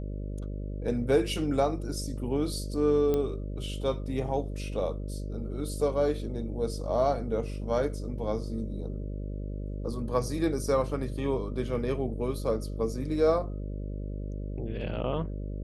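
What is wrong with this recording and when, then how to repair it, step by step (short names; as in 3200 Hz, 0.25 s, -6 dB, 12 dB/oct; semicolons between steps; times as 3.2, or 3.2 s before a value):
buzz 50 Hz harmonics 12 -35 dBFS
3.14 pop -17 dBFS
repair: de-click; de-hum 50 Hz, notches 12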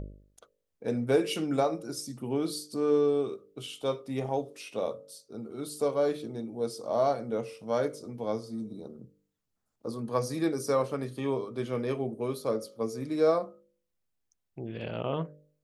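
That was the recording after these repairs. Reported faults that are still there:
3.14 pop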